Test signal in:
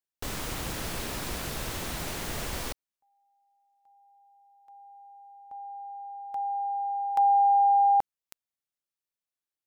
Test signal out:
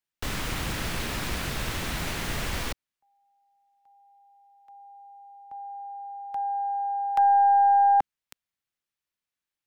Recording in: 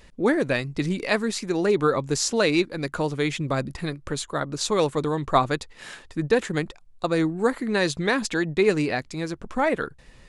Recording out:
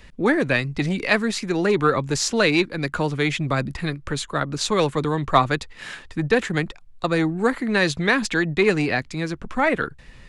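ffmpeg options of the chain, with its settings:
-filter_complex "[0:a]acrossover=split=280|530|3400[a][b][c][d];[a]aeval=exprs='0.1*sin(PI/2*1.41*val(0)/0.1)':c=same[e];[e][b][c][d]amix=inputs=4:normalize=0,aeval=exprs='0.631*(cos(1*acos(clip(val(0)/0.631,-1,1)))-cos(1*PI/2))+0.0251*(cos(4*acos(clip(val(0)/0.631,-1,1)))-cos(4*PI/2))':c=same,equalizer=f=2.1k:w=0.5:g=7.5,volume=-1.5dB"

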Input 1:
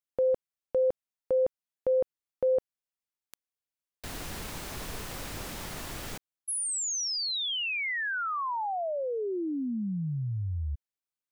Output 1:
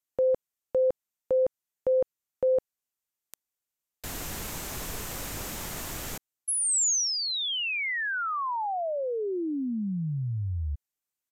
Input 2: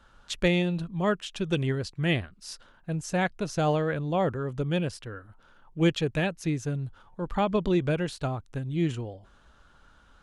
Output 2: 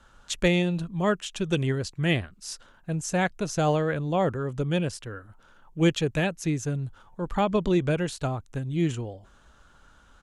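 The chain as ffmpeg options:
-filter_complex "[0:a]acrossover=split=730|3000[a][b][c];[c]aexciter=amount=2.1:drive=3.5:freq=6.2k[d];[a][b][d]amix=inputs=3:normalize=0,aresample=32000,aresample=44100,volume=1.5dB"

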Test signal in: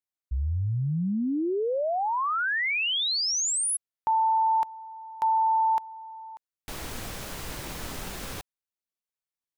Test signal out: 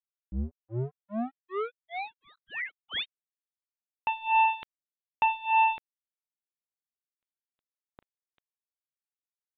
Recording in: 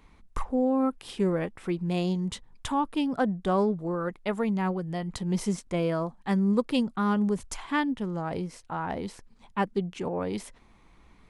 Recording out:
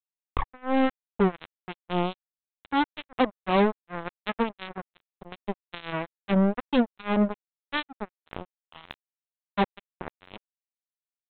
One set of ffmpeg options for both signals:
-filter_complex "[0:a]acrossover=split=1200[a][b];[a]aeval=exprs='val(0)*(1-0.7/2+0.7/2*cos(2*PI*2.5*n/s))':c=same[c];[b]aeval=exprs='val(0)*(1-0.7/2-0.7/2*cos(2*PI*2.5*n/s))':c=same[d];[c][d]amix=inputs=2:normalize=0,aresample=8000,acrusher=bits=3:mix=0:aa=0.5,aresample=44100,volume=3.5dB"

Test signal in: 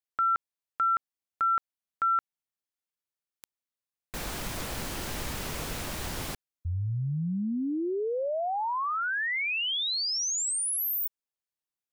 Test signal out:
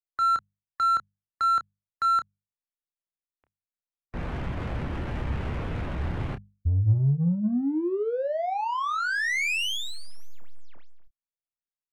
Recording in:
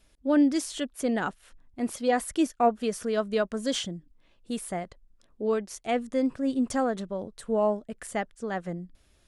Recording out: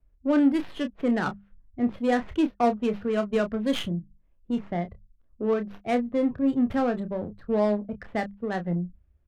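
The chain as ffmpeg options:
-filter_complex "[0:a]afftdn=nr=15:nf=-46,lowpass=8.2k,equalizer=f=87:t=o:w=2.2:g=11.5,bandreject=f=50:t=h:w=6,bandreject=f=100:t=h:w=6,bandreject=f=150:t=h:w=6,bandreject=f=200:t=h:w=6,acrossover=split=190|3400[a][b][c];[c]aeval=exprs='abs(val(0))':c=same[d];[a][b][d]amix=inputs=3:normalize=0,adynamicsmooth=sensitivity=6.5:basefreq=1.9k,asplit=2[e][f];[f]asoftclip=type=tanh:threshold=-27dB,volume=-5dB[g];[e][g]amix=inputs=2:normalize=0,asplit=2[h][i];[i]adelay=29,volume=-9dB[j];[h][j]amix=inputs=2:normalize=0,adynamicequalizer=threshold=0.0112:dfrequency=1900:dqfactor=0.7:tfrequency=1900:tqfactor=0.7:attack=5:release=100:ratio=0.45:range=3:mode=boostabove:tftype=highshelf,volume=-2.5dB"

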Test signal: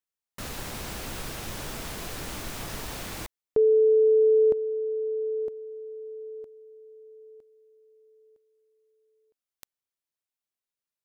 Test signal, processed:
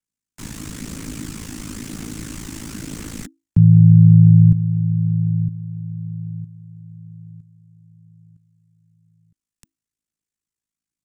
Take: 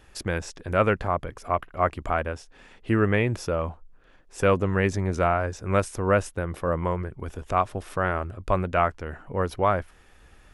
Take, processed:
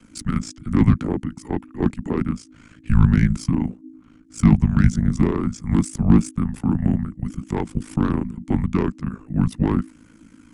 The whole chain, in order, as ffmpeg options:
-filter_complex "[0:a]equalizer=f=500:t=o:w=1:g=9,equalizer=f=1k:t=o:w=1:g=-11,equalizer=f=4k:t=o:w=1:g=-4,equalizer=f=8k:t=o:w=1:g=10,afreqshift=-300,aeval=exprs='val(0)*sin(2*PI*27*n/s)':c=same,highshelf=f=6.1k:g=-8.5,aphaser=in_gain=1:out_gain=1:delay=1.2:decay=0.23:speed=0.99:type=triangular,acrossover=split=260[a][b];[b]asoftclip=type=tanh:threshold=-24.5dB[c];[a][c]amix=inputs=2:normalize=0,volume=5.5dB"

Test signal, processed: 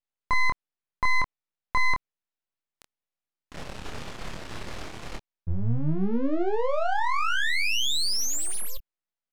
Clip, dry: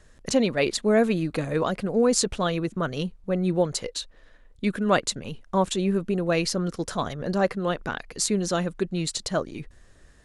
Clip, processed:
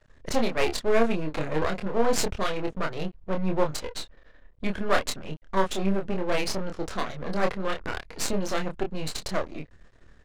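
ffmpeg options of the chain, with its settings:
-filter_complex "[0:a]aeval=exprs='max(val(0),0)':c=same,asplit=2[a][b];[b]adelay=26,volume=-4dB[c];[a][c]amix=inputs=2:normalize=0,adynamicsmooth=sensitivity=6:basefreq=4.5k,volume=1.5dB"

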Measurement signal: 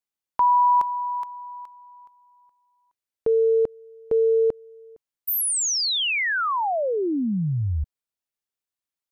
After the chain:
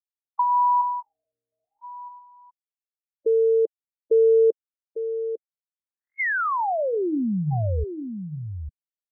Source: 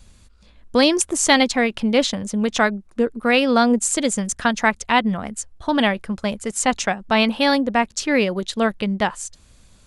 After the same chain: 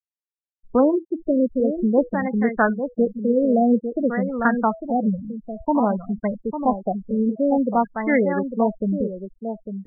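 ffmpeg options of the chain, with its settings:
-filter_complex "[0:a]bandreject=f=163.8:t=h:w=4,bandreject=f=327.6:t=h:w=4,bandreject=f=491.4:t=h:w=4,bandreject=f=655.2:t=h:w=4,bandreject=f=819:t=h:w=4,bandreject=f=982.8:t=h:w=4,bandreject=f=1.1466k:t=h:w=4,bandreject=f=1.3104k:t=h:w=4,bandreject=f=1.4742k:t=h:w=4,bandreject=f=1.638k:t=h:w=4,afftfilt=real='re*gte(hypot(re,im),0.126)':imag='im*gte(hypot(re,im),0.126)':win_size=1024:overlap=0.75,asplit=2[a][b];[b]aecho=0:1:851:0.376[c];[a][c]amix=inputs=2:normalize=0,afftfilt=real='re*lt(b*sr/1024,580*pow(2200/580,0.5+0.5*sin(2*PI*0.52*pts/sr)))':imag='im*lt(b*sr/1024,580*pow(2200/580,0.5+0.5*sin(2*PI*0.52*pts/sr)))':win_size=1024:overlap=0.75"

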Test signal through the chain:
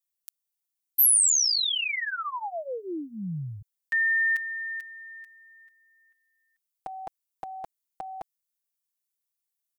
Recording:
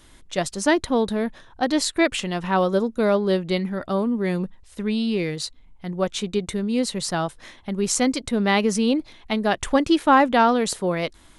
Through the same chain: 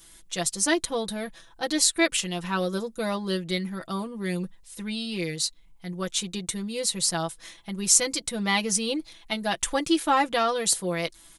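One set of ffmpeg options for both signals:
-af "aecho=1:1:6:0.81,crystalizer=i=4:c=0,volume=-9.5dB"

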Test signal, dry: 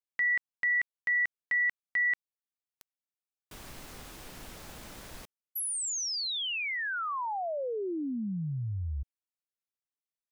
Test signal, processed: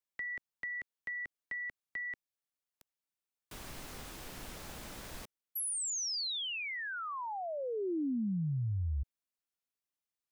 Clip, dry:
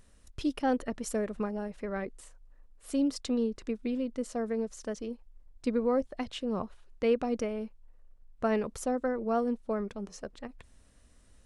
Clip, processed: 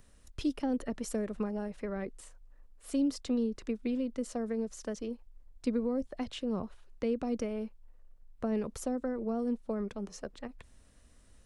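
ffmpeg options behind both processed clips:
-filter_complex "[0:a]acrossover=split=660[a][b];[b]alimiter=level_in=9dB:limit=-24dB:level=0:latency=1:release=21,volume=-9dB[c];[a][c]amix=inputs=2:normalize=0,acrossover=split=350|4300[d][e][f];[e]acompressor=threshold=-39dB:ratio=6:attack=30:release=203:knee=2.83:detection=peak[g];[d][g][f]amix=inputs=3:normalize=0"

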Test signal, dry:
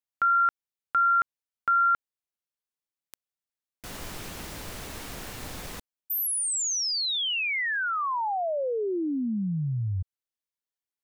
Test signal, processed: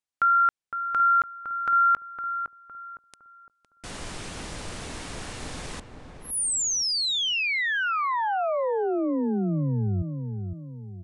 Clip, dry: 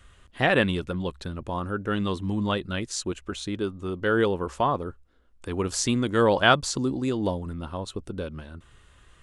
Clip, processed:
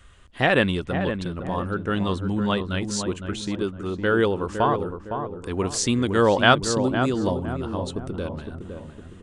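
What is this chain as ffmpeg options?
-filter_complex "[0:a]asplit=2[a][b];[b]adelay=510,lowpass=f=1.2k:p=1,volume=-6.5dB,asplit=2[c][d];[d]adelay=510,lowpass=f=1.2k:p=1,volume=0.44,asplit=2[e][f];[f]adelay=510,lowpass=f=1.2k:p=1,volume=0.44,asplit=2[g][h];[h]adelay=510,lowpass=f=1.2k:p=1,volume=0.44,asplit=2[i][j];[j]adelay=510,lowpass=f=1.2k:p=1,volume=0.44[k];[c][e][g][i][k]amix=inputs=5:normalize=0[l];[a][l]amix=inputs=2:normalize=0,aresample=22050,aresample=44100,volume=2dB"

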